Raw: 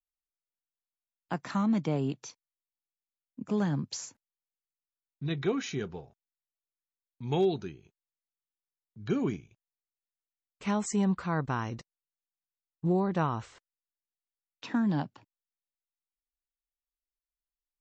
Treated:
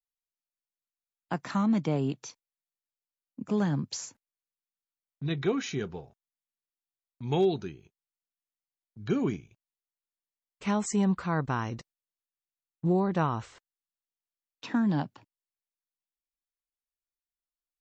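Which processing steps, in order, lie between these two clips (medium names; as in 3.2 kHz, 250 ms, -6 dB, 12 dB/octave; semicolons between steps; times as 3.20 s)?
gate -56 dBFS, range -8 dB; trim +1.5 dB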